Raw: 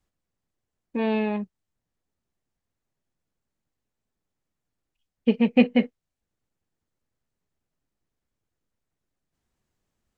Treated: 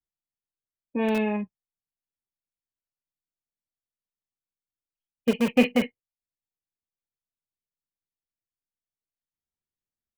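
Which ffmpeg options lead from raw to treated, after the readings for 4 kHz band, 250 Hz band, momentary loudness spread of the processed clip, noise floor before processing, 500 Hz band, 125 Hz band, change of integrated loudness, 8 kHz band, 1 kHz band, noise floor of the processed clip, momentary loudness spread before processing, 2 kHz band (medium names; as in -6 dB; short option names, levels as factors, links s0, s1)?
+1.5 dB, -2.5 dB, 13 LU, -84 dBFS, 0.0 dB, -2.0 dB, -2.0 dB, no reading, +0.5 dB, under -85 dBFS, 15 LU, +1.5 dB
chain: -filter_complex "[0:a]afftdn=nr=21:nf=-42,acrossover=split=190|1300[s0][s1][s2];[s0]aeval=exprs='(mod(35.5*val(0)+1,2)-1)/35.5':c=same[s3];[s2]asplit=2[s4][s5];[s5]adelay=48,volume=0.668[s6];[s4][s6]amix=inputs=2:normalize=0[s7];[s3][s1][s7]amix=inputs=3:normalize=0"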